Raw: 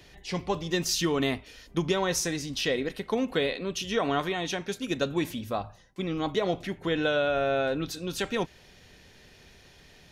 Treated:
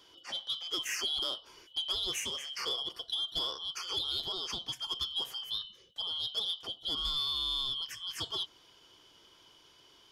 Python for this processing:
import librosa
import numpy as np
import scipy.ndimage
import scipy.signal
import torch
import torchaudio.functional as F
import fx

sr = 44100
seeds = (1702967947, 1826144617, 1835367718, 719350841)

y = fx.band_shuffle(x, sr, order='2413')
y = 10.0 ** (-18.0 / 20.0) * np.tanh(y / 10.0 ** (-18.0 / 20.0))
y = fx.band_squash(y, sr, depth_pct=40, at=(3.83, 6.27))
y = F.gain(torch.from_numpy(y), -6.5).numpy()